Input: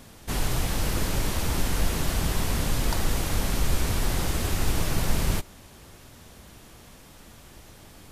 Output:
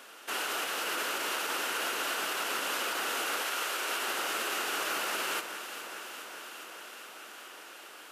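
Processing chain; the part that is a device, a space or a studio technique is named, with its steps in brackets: laptop speaker (high-pass 360 Hz 24 dB/octave; peaking EQ 1.4 kHz +11 dB 0.55 oct; peaking EQ 2.8 kHz +9 dB 0.38 oct; peak limiter -22 dBFS, peak gain reduction 10 dB); 3.42–4.06 s: high-pass 610 Hz -> 230 Hz 12 dB/octave; echo whose repeats swap between lows and highs 207 ms, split 2.3 kHz, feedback 87%, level -10 dB; trim -2 dB

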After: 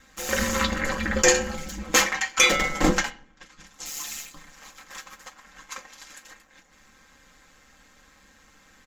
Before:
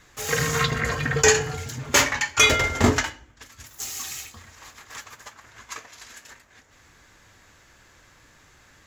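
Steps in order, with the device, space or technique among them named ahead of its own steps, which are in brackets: 1.95–2.54 s: high-pass 200 Hz 6 dB/octave; 3.10–3.86 s: distance through air 74 m; ring-modulated robot voice (ring modulator 73 Hz; comb 3.8 ms, depth 70%)

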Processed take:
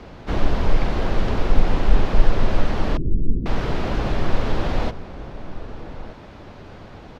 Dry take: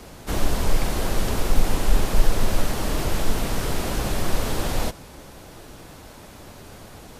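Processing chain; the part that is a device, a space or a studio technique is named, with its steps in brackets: shout across a valley (distance through air 230 m; echo from a far wall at 210 m, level -13 dB); 2.97–3.46 s: inverse Chebyshev low-pass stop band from 700 Hz, stop band 40 dB; trim +3 dB

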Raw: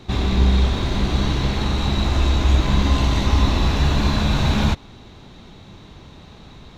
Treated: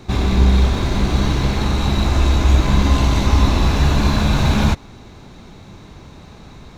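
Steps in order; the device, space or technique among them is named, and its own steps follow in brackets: band-stop 1.9 kHz, Q 20; exciter from parts (in parallel at -4.5 dB: high-pass 2.1 kHz 24 dB/octave + saturation -30.5 dBFS, distortion -13 dB + high-pass 2.6 kHz 12 dB/octave); on the sum: trim +3 dB

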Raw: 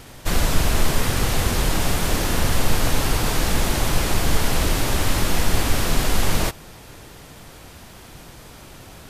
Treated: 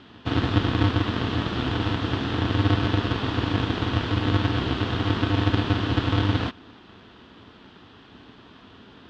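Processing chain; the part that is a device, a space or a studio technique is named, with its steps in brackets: ring modulator pedal into a guitar cabinet (polarity switched at an audio rate 100 Hz; cabinet simulation 91–3600 Hz, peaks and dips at 150 Hz -9 dB, 270 Hz +4 dB, 560 Hz -9 dB, 800 Hz -4 dB, 2.2 kHz -8 dB, 3.3 kHz +4 dB); trim -3.5 dB

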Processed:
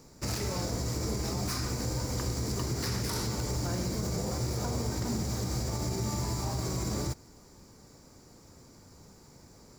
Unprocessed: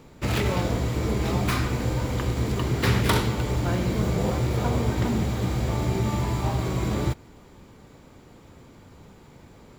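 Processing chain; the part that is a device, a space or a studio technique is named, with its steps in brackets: over-bright horn tweeter (resonant high shelf 4.1 kHz +8 dB, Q 3; peak limiter -17 dBFS, peak gain reduction 11.5 dB); trim -6 dB

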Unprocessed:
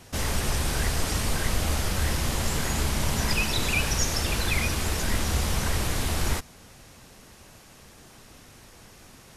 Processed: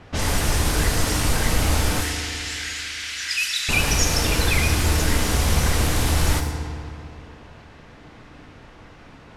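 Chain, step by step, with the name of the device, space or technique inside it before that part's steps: 2.01–3.69 s: steep high-pass 1.6 kHz 36 dB/octave; FDN reverb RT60 2.8 s, high-frequency decay 0.55×, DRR 4 dB; cassette deck with a dynamic noise filter (white noise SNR 25 dB; level-controlled noise filter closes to 2 kHz, open at -22 dBFS); trim +4.5 dB

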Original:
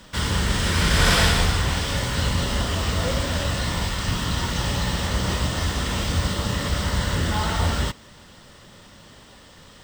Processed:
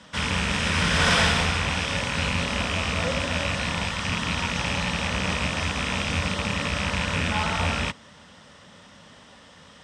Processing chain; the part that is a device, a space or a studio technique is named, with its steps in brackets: car door speaker with a rattle (rattle on loud lows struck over -25 dBFS, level -15 dBFS; cabinet simulation 94–8800 Hz, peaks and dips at 120 Hz -7 dB, 360 Hz -9 dB, 4.4 kHz -6 dB, 7.5 kHz -6 dB)

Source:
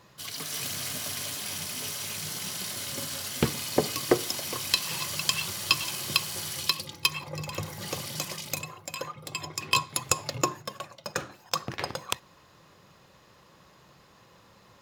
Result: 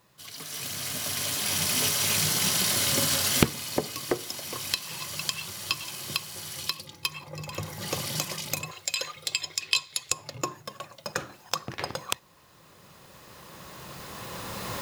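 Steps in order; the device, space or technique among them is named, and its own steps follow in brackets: 8.71–10.12 s: graphic EQ 125/250/1000/2000/4000/8000 Hz -10/-10/-8/+4/+10/+6 dB; cheap recorder with automatic gain (white noise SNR 32 dB; recorder AGC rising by 10 dB/s); trim -8 dB

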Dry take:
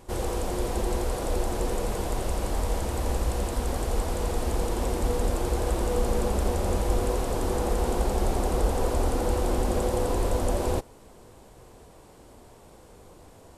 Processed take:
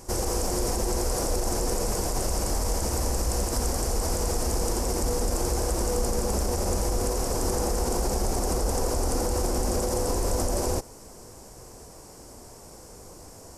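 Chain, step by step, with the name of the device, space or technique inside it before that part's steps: over-bright horn tweeter (resonant high shelf 4.4 kHz +6.5 dB, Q 3; peak limiter -20.5 dBFS, peak gain reduction 10.5 dB); trim +3.5 dB

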